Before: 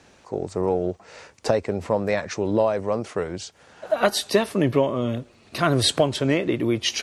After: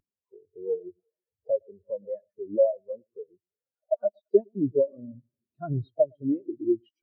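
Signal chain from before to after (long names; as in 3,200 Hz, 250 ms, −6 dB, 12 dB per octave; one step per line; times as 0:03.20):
linear delta modulator 64 kbit/s, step −30 dBFS
delay that swaps between a low-pass and a high-pass 112 ms, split 980 Hz, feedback 63%, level −10.5 dB
in parallel at +0.5 dB: downward compressor, threshold −29 dBFS, peak gain reduction 15 dB
on the sum: every bin expanded away from the loudest bin 4 to 1
level −5.5 dB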